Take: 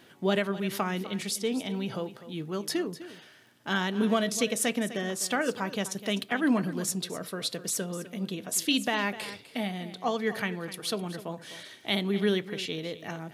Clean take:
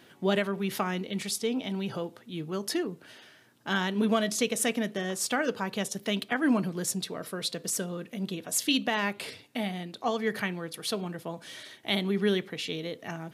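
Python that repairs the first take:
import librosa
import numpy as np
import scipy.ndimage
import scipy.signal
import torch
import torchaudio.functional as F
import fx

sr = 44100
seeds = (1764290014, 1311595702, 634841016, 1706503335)

y = fx.fix_declick_ar(x, sr, threshold=6.5)
y = fx.fix_echo_inverse(y, sr, delay_ms=252, level_db=-14.5)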